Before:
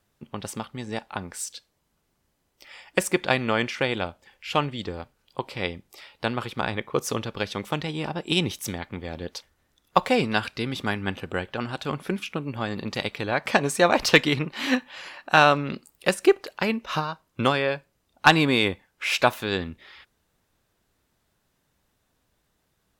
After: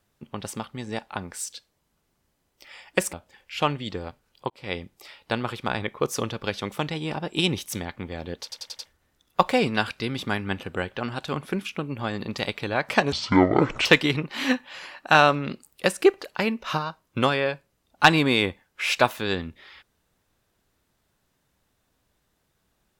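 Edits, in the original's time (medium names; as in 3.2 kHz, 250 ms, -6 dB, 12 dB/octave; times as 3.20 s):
3.13–4.06 s: delete
5.43–5.71 s: fade in
9.36 s: stutter 0.09 s, 5 plays
13.69–14.08 s: speed 53%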